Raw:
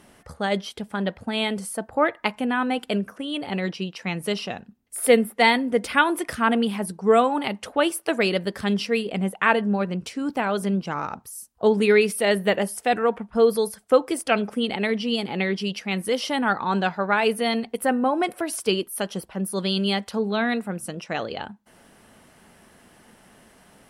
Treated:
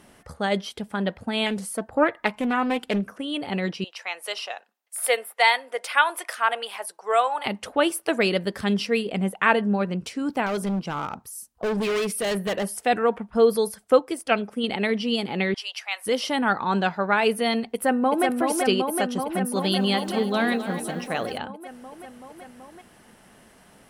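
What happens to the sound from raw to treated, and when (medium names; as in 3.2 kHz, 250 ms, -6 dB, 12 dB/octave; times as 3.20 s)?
1.46–3.18 s: loudspeaker Doppler distortion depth 0.35 ms
3.84–7.46 s: high-pass 590 Hz 24 dB/octave
10.46–12.67 s: overload inside the chain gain 22.5 dB
13.99–14.64 s: upward expansion, over -29 dBFS
15.54–16.06 s: steep high-pass 700 Hz
17.65–18.25 s: echo throw 380 ms, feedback 80%, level -3.5 dB
19.26–21.38 s: bit-crushed delay 258 ms, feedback 55%, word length 8-bit, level -11.5 dB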